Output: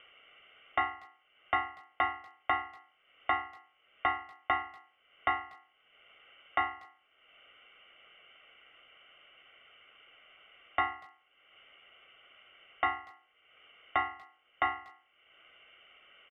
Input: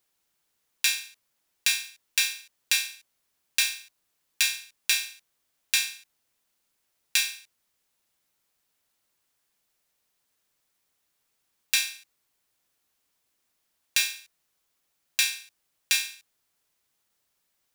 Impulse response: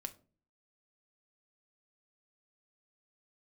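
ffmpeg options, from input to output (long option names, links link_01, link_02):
-filter_complex "[0:a]highpass=730,tiltshelf=frequency=1300:gain=8.5,aecho=1:1:1.4:0.98,asplit=2[link_01][link_02];[link_02]acompressor=mode=upward:threshold=-31dB:ratio=2.5,volume=0.5dB[link_03];[link_01][link_03]amix=inputs=2:normalize=0,aeval=exprs='0.355*(abs(mod(val(0)/0.355+3,4)-2)-1)':channel_layout=same,lowpass=frequency=2900:width_type=q:width=0.5098,lowpass=frequency=2900:width_type=q:width=0.6013,lowpass=frequency=2900:width_type=q:width=0.9,lowpass=frequency=2900:width_type=q:width=2.563,afreqshift=-3400,asetrate=48000,aresample=44100,asplit=2[link_04][link_05];[link_05]adelay=240,highpass=300,lowpass=3400,asoftclip=type=hard:threshold=-20dB,volume=-24dB[link_06];[link_04][link_06]amix=inputs=2:normalize=0,volume=-3.5dB"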